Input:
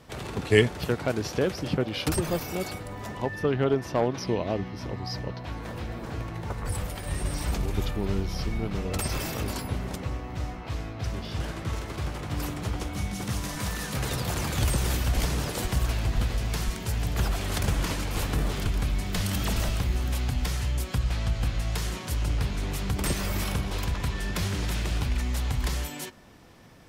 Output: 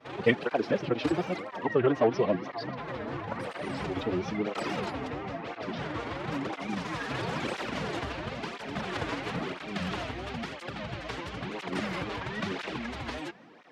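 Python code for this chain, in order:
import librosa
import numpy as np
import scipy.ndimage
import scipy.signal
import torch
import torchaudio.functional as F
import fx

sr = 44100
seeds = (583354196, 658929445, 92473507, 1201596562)

p1 = fx.wow_flutter(x, sr, seeds[0], rate_hz=2.1, depth_cents=140.0)
p2 = fx.stretch_vocoder(p1, sr, factor=0.51)
p3 = fx.rider(p2, sr, range_db=10, speed_s=2.0)
p4 = p2 + (p3 * librosa.db_to_amplitude(0.0))
p5 = fx.bandpass_edges(p4, sr, low_hz=220.0, high_hz=3000.0)
y = fx.flanger_cancel(p5, sr, hz=0.99, depth_ms=5.9)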